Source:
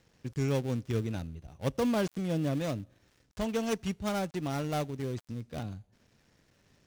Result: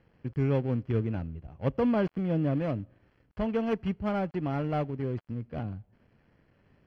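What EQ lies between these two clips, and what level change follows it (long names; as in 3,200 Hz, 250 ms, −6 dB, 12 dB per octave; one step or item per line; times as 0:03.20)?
Butterworth band-reject 3,700 Hz, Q 6.9
high-frequency loss of the air 420 metres
+3.5 dB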